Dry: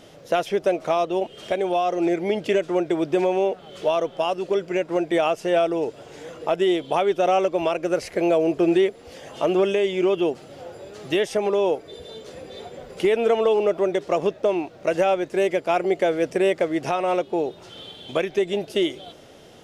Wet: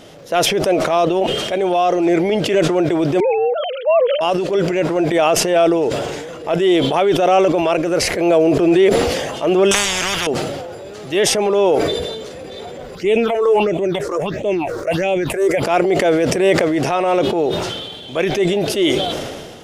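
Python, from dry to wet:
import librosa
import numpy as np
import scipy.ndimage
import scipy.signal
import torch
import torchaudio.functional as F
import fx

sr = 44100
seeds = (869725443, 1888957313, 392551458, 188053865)

y = fx.sine_speech(x, sr, at=(3.2, 4.21))
y = fx.spectral_comp(y, sr, ratio=10.0, at=(9.71, 10.27))
y = fx.phaser_stages(y, sr, stages=6, low_hz=180.0, high_hz=1400.0, hz=1.5, feedback_pct=30, at=(12.95, 15.63))
y = fx.transient(y, sr, attack_db=-7, sustain_db=2)
y = fx.sustainer(y, sr, db_per_s=34.0)
y = F.gain(torch.from_numpy(y), 7.0).numpy()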